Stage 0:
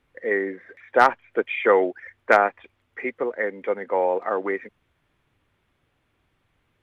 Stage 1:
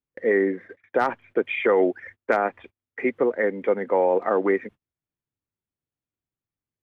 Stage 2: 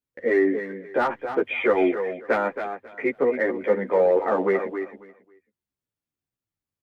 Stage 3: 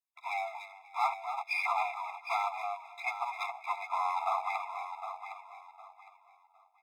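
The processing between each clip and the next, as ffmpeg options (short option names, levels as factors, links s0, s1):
-af "agate=range=0.0316:threshold=0.00562:ratio=16:detection=peak,equalizer=f=180:t=o:w=3:g=8.5,alimiter=limit=0.299:level=0:latency=1:release=70"
-filter_complex "[0:a]asplit=2[s0][s1];[s1]volume=5.62,asoftclip=hard,volume=0.178,volume=0.398[s2];[s0][s2]amix=inputs=2:normalize=0,aecho=1:1:272|544|816:0.355|0.071|0.0142,asplit=2[s3][s4];[s4]adelay=11.6,afreqshift=-1.6[s5];[s3][s5]amix=inputs=2:normalize=1"
-filter_complex "[0:a]aeval=exprs='if(lt(val(0),0),0.251*val(0),val(0))':c=same,asplit=2[s0][s1];[s1]aecho=0:1:760|1520|2280:0.335|0.0871|0.0226[s2];[s0][s2]amix=inputs=2:normalize=0,afftfilt=real='re*eq(mod(floor(b*sr/1024/680),2),1)':imag='im*eq(mod(floor(b*sr/1024/680),2),1)':win_size=1024:overlap=0.75"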